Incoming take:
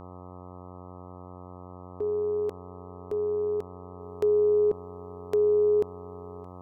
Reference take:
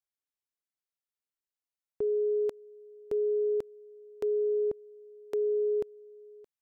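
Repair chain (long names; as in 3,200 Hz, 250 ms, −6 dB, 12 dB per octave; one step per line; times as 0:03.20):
hum removal 90.5 Hz, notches 14
level 0 dB, from 0:04.00 −6 dB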